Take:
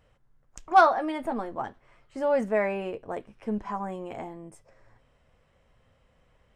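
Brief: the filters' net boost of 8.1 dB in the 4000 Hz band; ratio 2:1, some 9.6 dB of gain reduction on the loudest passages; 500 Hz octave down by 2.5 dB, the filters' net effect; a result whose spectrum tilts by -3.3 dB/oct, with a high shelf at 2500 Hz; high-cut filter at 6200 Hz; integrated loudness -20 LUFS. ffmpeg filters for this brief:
-af "lowpass=6.2k,equalizer=f=500:t=o:g=-4,highshelf=f=2.5k:g=8.5,equalizer=f=4k:t=o:g=3.5,acompressor=threshold=-30dB:ratio=2,volume=14dB"

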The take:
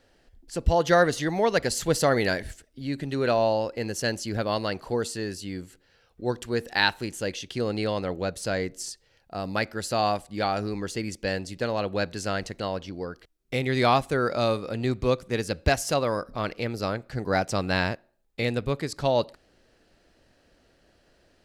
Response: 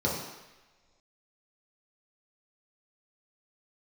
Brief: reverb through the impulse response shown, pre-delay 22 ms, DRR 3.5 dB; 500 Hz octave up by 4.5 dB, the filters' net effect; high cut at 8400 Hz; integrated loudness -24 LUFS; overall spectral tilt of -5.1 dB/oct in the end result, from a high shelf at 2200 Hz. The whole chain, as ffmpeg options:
-filter_complex "[0:a]lowpass=8.4k,equalizer=f=500:t=o:g=5,highshelf=f=2.2k:g=5,asplit=2[a][b];[1:a]atrim=start_sample=2205,adelay=22[c];[b][c]afir=irnorm=-1:irlink=0,volume=-14dB[d];[a][d]amix=inputs=2:normalize=0,volume=-3.5dB"

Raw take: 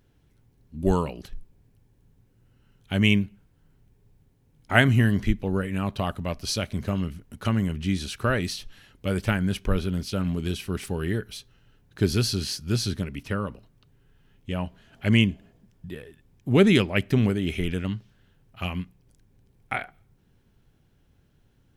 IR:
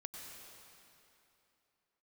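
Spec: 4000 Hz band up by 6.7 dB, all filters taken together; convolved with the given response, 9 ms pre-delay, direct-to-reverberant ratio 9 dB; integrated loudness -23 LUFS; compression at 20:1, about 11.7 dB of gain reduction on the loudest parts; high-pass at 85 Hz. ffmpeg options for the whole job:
-filter_complex "[0:a]highpass=85,equalizer=f=4k:t=o:g=9,acompressor=threshold=-23dB:ratio=20,asplit=2[a][b];[1:a]atrim=start_sample=2205,adelay=9[c];[b][c]afir=irnorm=-1:irlink=0,volume=-6dB[d];[a][d]amix=inputs=2:normalize=0,volume=7dB"

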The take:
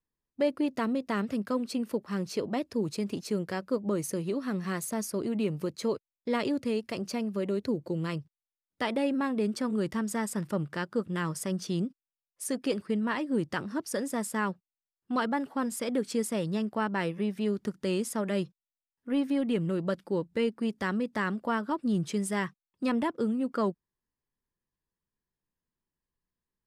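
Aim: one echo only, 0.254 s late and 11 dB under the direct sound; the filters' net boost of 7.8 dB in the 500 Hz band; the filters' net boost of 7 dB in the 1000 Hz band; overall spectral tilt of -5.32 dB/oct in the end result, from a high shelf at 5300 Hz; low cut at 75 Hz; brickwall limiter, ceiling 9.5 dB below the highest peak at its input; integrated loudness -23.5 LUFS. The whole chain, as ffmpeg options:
-af "highpass=75,equalizer=f=500:t=o:g=8,equalizer=f=1k:t=o:g=6,highshelf=f=5.3k:g=4,alimiter=limit=-19.5dB:level=0:latency=1,aecho=1:1:254:0.282,volume=6dB"

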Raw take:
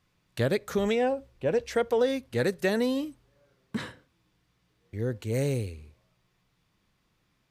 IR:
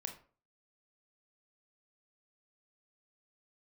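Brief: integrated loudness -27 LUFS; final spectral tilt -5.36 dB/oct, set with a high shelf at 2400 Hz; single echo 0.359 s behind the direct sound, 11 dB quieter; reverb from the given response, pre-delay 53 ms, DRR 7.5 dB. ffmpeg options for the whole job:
-filter_complex "[0:a]highshelf=f=2.4k:g=-8.5,aecho=1:1:359:0.282,asplit=2[a][b];[1:a]atrim=start_sample=2205,adelay=53[c];[b][c]afir=irnorm=-1:irlink=0,volume=-5.5dB[d];[a][d]amix=inputs=2:normalize=0,volume=1.5dB"

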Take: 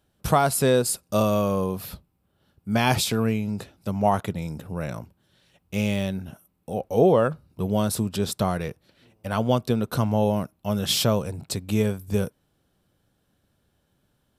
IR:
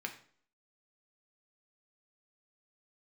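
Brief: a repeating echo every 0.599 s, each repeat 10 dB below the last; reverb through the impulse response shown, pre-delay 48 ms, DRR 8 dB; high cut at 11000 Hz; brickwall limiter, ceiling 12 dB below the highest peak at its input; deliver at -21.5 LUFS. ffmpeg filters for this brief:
-filter_complex "[0:a]lowpass=11k,alimiter=limit=-18dB:level=0:latency=1,aecho=1:1:599|1198|1797|2396:0.316|0.101|0.0324|0.0104,asplit=2[a][b];[1:a]atrim=start_sample=2205,adelay=48[c];[b][c]afir=irnorm=-1:irlink=0,volume=-9dB[d];[a][d]amix=inputs=2:normalize=0,volume=7.5dB"

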